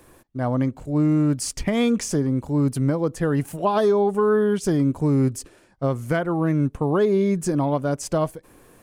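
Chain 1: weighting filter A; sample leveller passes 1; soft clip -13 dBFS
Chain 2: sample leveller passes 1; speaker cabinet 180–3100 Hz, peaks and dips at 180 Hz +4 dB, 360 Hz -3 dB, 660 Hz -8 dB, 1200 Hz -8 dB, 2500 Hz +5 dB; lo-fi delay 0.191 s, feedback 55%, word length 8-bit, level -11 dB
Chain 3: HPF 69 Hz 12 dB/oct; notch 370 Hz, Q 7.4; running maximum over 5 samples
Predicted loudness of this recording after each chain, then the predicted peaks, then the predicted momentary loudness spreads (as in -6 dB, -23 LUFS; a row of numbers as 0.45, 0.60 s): -25.0, -21.5, -23.0 LUFS; -14.0, -8.5, -9.5 dBFS; 8, 8, 6 LU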